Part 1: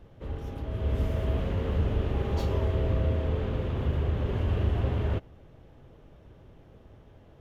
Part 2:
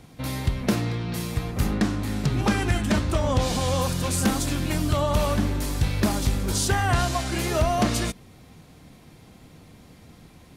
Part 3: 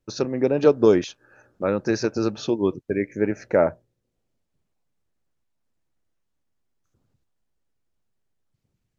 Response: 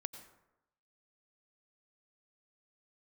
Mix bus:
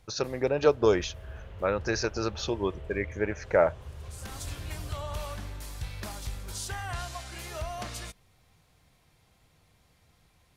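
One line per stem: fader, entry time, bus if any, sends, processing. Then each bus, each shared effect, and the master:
-12.5 dB, 0.00 s, no send, dry
-11.0 dB, 0.00 s, no send, auto duck -24 dB, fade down 0.70 s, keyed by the third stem
+0.5 dB, 0.00 s, no send, dry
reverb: off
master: bell 250 Hz -13 dB 1.6 oct

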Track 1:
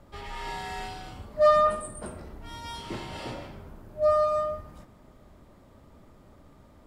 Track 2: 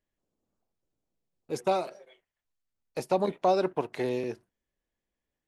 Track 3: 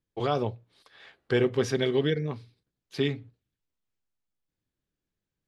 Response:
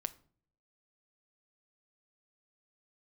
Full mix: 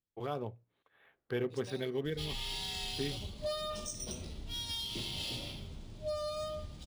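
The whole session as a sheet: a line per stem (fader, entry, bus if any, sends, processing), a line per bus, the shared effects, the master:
0.0 dB, 2.05 s, bus A, no send, vibrato 2.1 Hz 20 cents
-19.0 dB, 0.00 s, bus A, no send, dry
-10.5 dB, 0.00 s, no bus, no send, Wiener smoothing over 9 samples
bus A: 0.0 dB, EQ curve 130 Hz 0 dB, 1600 Hz -14 dB, 3400 Hz +14 dB, 9800 Hz +8 dB; compressor 6:1, threshold -34 dBFS, peak gain reduction 11.5 dB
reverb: off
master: decimation joined by straight lines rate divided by 3×

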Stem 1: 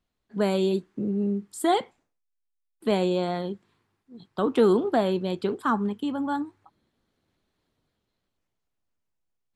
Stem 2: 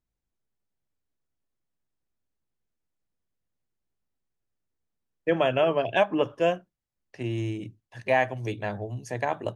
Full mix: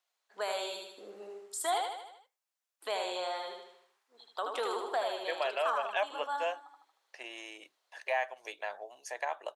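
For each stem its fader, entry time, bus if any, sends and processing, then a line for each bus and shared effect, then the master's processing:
0.0 dB, 0.00 s, no send, echo send -4.5 dB, bell 6400 Hz +4.5 dB 1 oct
-0.5 dB, 0.00 s, no send, no echo send, dry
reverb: off
echo: feedback echo 77 ms, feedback 46%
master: HPF 620 Hz 24 dB/oct; compressor 1.5:1, threshold -40 dBFS, peak gain reduction 7.5 dB

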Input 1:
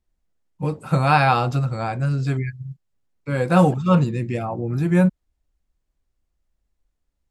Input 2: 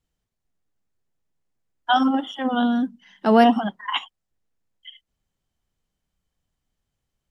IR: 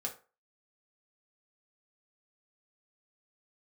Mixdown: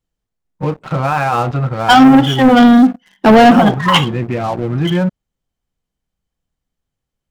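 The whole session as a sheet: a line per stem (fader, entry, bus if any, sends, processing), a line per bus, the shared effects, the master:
-1.5 dB, 0.00 s, no send, LPF 2100 Hz 12 dB/oct; limiter -15 dBFS, peak gain reduction 10.5 dB
+1.5 dB, 0.00 s, send -7.5 dB, low shelf 470 Hz +7 dB; limiter -6.5 dBFS, peak gain reduction 5 dB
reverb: on, RT60 0.35 s, pre-delay 3 ms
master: low shelf 280 Hz -5.5 dB; sample leveller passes 3

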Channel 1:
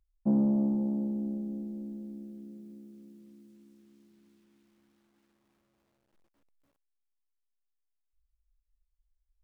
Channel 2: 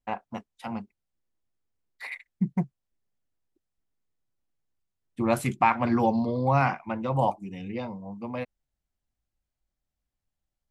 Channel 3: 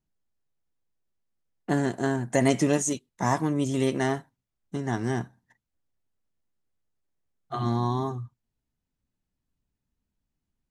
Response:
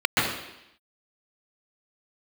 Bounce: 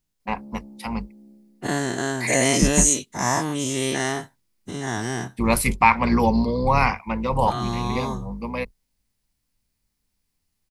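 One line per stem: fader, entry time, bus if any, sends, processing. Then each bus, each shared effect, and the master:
-15.5 dB, 0.00 s, no send, auto duck -7 dB, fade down 0.30 s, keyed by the third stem
+2.0 dB, 0.20 s, no send, octaver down 2 oct, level -1 dB; ripple EQ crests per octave 0.89, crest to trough 8 dB
-3.5 dB, 0.00 s, no send, spectral dilation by 0.12 s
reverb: off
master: high shelf 2100 Hz +10.5 dB

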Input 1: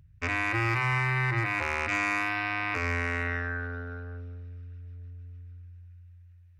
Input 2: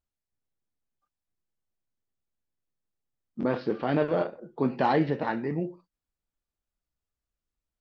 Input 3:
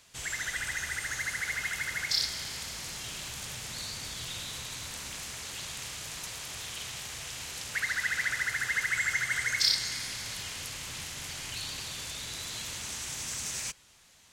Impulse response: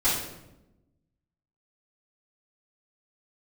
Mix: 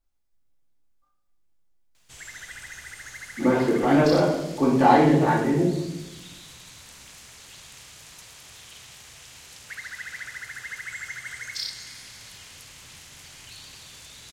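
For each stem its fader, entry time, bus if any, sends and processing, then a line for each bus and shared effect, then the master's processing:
off
-3.5 dB, 0.00 s, send -3.5 dB, dry
-6.5 dB, 1.95 s, no send, bit-crush 11-bit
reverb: on, RT60 0.95 s, pre-delay 3 ms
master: dry

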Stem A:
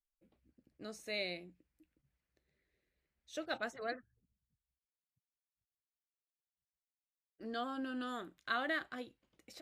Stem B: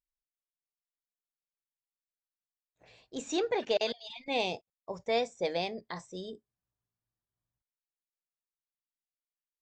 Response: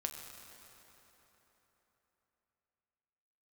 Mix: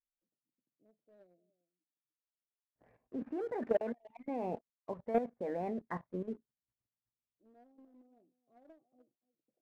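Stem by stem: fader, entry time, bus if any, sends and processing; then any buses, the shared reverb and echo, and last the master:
-20.0 dB, 0.00 s, no send, echo send -18.5 dB, elliptic band-pass 130–690 Hz, stop band 40 dB; auto duck -22 dB, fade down 1.60 s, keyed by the second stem
-1.5 dB, 0.00 s, no send, no echo send, steep low-pass 1900 Hz 48 dB/oct; bell 240 Hz +9.5 dB 0.49 oct; level quantiser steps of 13 dB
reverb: off
echo: echo 0.295 s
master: sample leveller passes 1

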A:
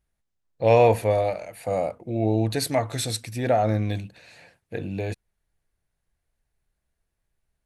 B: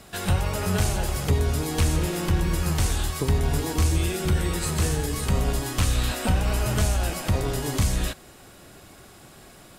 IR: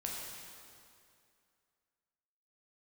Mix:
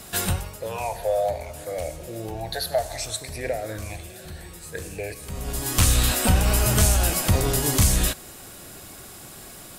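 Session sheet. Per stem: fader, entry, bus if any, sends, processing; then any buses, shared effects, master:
+1.0 dB, 0.00 s, send -10 dB, resonant low shelf 350 Hz -13 dB, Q 1.5; compressor 3:1, threshold -24 dBFS, peak gain reduction 10 dB; phaser stages 8, 0.65 Hz, lowest notch 300–1100 Hz
+3.0 dB, 0.00 s, no send, high shelf 5500 Hz +7.5 dB; auto duck -20 dB, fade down 0.40 s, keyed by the first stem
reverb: on, RT60 2.4 s, pre-delay 8 ms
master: high shelf 9300 Hz +4.5 dB

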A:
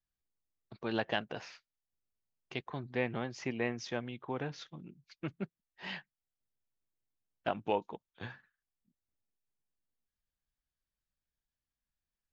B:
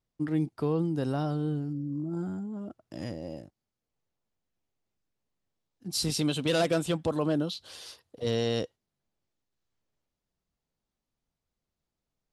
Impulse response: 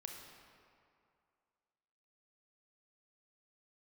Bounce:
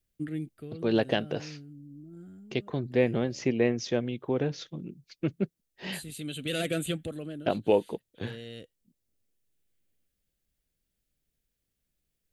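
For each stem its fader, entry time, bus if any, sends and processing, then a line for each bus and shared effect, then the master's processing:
+0.5 dB, 0.00 s, no send, resonant low shelf 670 Hz +8.5 dB, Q 1.5
-1.0 dB, 0.00 s, no send, fixed phaser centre 2300 Hz, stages 4; auto duck -12 dB, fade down 0.55 s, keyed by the first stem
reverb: off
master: high shelf 3100 Hz +9.5 dB

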